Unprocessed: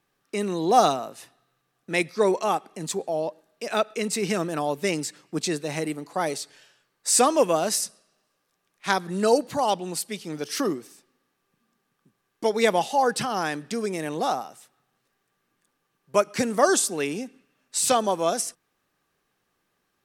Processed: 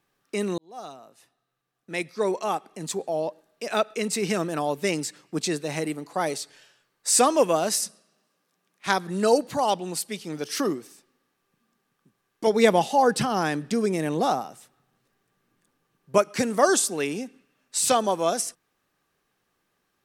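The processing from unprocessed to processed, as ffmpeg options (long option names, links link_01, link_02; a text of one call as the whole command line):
ffmpeg -i in.wav -filter_complex "[0:a]asettb=1/sr,asplit=3[link_01][link_02][link_03];[link_01]atrim=end=7.804[link_04];[link_02]atrim=start=7.8:end=8.87,asetpts=PTS-STARTPTS,afade=type=in:duration=0.004:curve=qsin,afade=type=out:start_time=1.066:duration=0.004:curve=qsin,highpass=frequency=180:width_type=q:width=1.8[link_05];[link_03]atrim=start=8.866[link_06];[link_04][link_05]acrossfade=duration=0.004:curve1=hsin:curve2=qsin[link_07];[link_07][link_06]acrossfade=duration=0.004:curve1=qsin:curve2=hsin,asettb=1/sr,asplit=3[link_08][link_09][link_10];[link_08]atrim=end=12.474[link_11];[link_09]atrim=start=12.47:end=16.18,asetpts=PTS-STARTPTS,afade=type=in:duration=0.004:curve=qsin,afade=type=out:start_time=3.706:duration=0.004:curve=qsin,lowshelf=frequency=380:gain=7.5[link_12];[link_10]atrim=start=16.176[link_13];[link_11][link_12]acrossfade=duration=0.004:curve1=hsin:curve2=qsin[link_14];[link_14][link_13]acrossfade=duration=0.004:curve1=qsin:curve2=hsin,asplit=2[link_15][link_16];[link_15]atrim=end=0.58,asetpts=PTS-STARTPTS,afade=type=out:start_time=0.576:duration=0.004:curve=hsin[link_17];[link_16]atrim=start=0.58,asetpts=PTS-STARTPTS,afade=type=in:duration=2.64[link_18];[link_17][link_18]concat=n=2:v=0:a=1" out.wav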